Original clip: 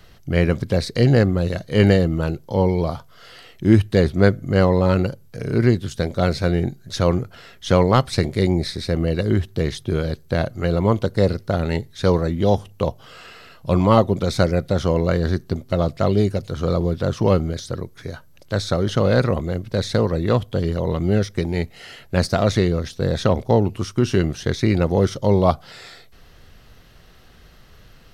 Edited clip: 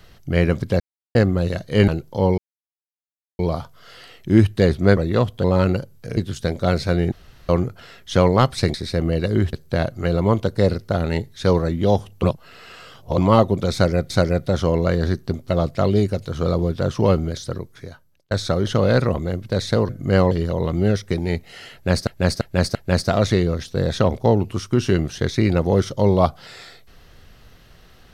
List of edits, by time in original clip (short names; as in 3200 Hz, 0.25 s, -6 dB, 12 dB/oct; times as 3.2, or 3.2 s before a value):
0.8–1.15 mute
1.88–2.24 cut
2.74 insert silence 1.01 s
4.32–4.74 swap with 20.11–20.58
5.47–5.72 cut
6.67–7.04 room tone
8.29–8.69 cut
9.48–10.12 cut
12.82–13.77 reverse
14.32–14.69 loop, 2 plays
17.75–18.53 fade out
22–22.34 loop, 4 plays